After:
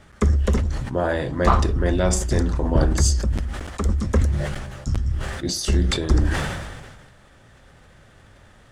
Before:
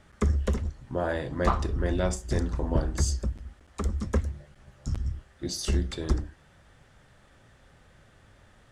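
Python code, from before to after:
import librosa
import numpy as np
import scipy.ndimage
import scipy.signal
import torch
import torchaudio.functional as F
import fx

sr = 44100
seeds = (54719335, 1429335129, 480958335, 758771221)

y = fx.sustainer(x, sr, db_per_s=37.0)
y = y * librosa.db_to_amplitude(6.0)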